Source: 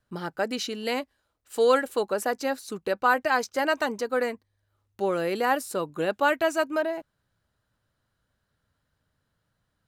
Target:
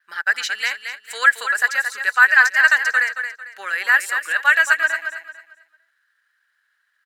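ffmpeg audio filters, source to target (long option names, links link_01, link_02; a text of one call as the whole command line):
ffmpeg -i in.wav -filter_complex "[0:a]adynamicequalizer=threshold=0.00158:dfrequency=7500:dqfactor=3.1:tfrequency=7500:tqfactor=3.1:attack=5:release=100:ratio=0.375:range=3:mode=boostabove:tftype=bell,highpass=frequency=1700:width_type=q:width=6.2,atempo=1.4,asplit=2[link_01][link_02];[link_02]aecho=0:1:224|448|672|896:0.398|0.119|0.0358|0.0107[link_03];[link_01][link_03]amix=inputs=2:normalize=0,volume=4.5dB" out.wav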